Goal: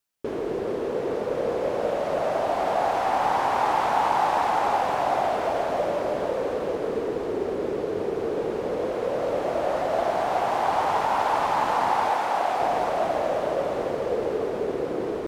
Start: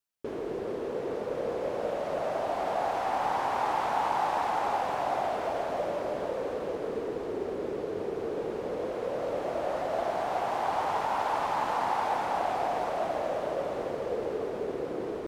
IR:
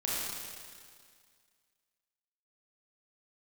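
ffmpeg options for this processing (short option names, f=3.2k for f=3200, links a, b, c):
-filter_complex "[0:a]asettb=1/sr,asplit=3[a][b][c];[a]atrim=end=12.104[d];[b]atrim=start=12.1:end=12.6,asetpts=PTS-STARTPTS,afade=t=in:d=0.004:c=qsin,afade=t=out:st=0.496:d=0.004:c=qsin,lowshelf=f=220:g=-11[e];[c]atrim=start=12.596[f];[d][e]acrossfade=d=0.004:c1=hsin:c2=qsin[g];[g][f]acrossfade=d=0.004:c1=qsin:c2=hsin,volume=6dB"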